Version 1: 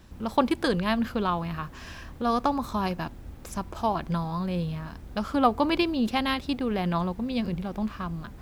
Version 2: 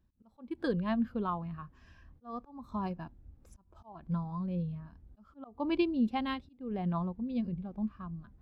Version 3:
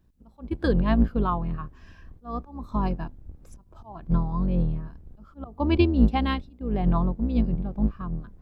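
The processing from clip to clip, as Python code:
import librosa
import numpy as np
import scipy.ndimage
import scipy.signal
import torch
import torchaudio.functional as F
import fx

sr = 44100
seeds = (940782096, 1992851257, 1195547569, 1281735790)

y1 = fx.auto_swell(x, sr, attack_ms=275.0)
y1 = fx.spectral_expand(y1, sr, expansion=1.5)
y1 = y1 * librosa.db_to_amplitude(-7.5)
y2 = fx.octave_divider(y1, sr, octaves=2, level_db=2.0)
y2 = y2 * librosa.db_to_amplitude(7.5)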